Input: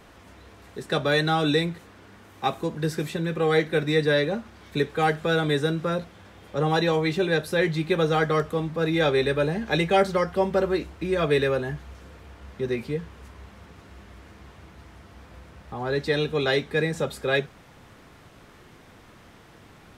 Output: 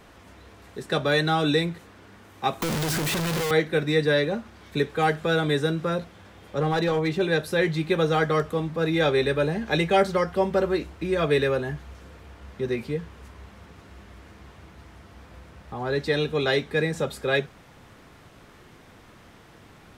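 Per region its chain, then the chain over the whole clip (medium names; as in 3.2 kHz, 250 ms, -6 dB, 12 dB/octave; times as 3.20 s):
2.62–3.51 s: one-bit comparator + three bands compressed up and down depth 70%
6.60–7.21 s: treble shelf 2 kHz -4.5 dB + hard clipper -18 dBFS
whole clip: none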